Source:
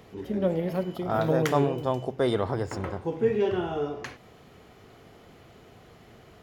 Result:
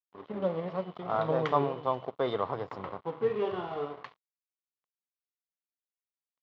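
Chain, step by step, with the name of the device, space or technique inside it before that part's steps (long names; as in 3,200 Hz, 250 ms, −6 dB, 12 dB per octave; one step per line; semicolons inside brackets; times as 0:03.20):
blown loudspeaker (dead-zone distortion −40.5 dBFS; loudspeaker in its box 170–3,700 Hz, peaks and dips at 230 Hz −7 dB, 340 Hz −7 dB, 1,100 Hz +8 dB, 1,600 Hz −6 dB, 2,500 Hz −5 dB)
level −2 dB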